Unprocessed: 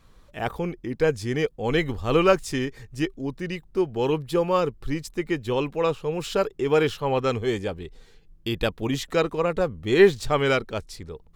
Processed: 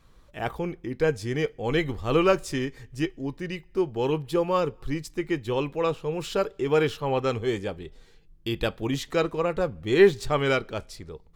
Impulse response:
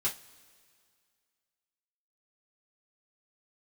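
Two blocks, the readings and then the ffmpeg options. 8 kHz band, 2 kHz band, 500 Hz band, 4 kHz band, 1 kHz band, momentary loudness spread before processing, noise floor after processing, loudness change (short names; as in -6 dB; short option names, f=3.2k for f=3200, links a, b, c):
-2.5 dB, -2.0 dB, -2.0 dB, -2.5 dB, -2.0 dB, 12 LU, -55 dBFS, -2.0 dB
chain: -filter_complex "[0:a]asplit=2[a][b];[b]highshelf=f=8.5k:g=-11[c];[1:a]atrim=start_sample=2205,afade=t=out:st=0.38:d=0.01,atrim=end_sample=17199[d];[c][d]afir=irnorm=-1:irlink=0,volume=-17dB[e];[a][e]amix=inputs=2:normalize=0,volume=-3dB"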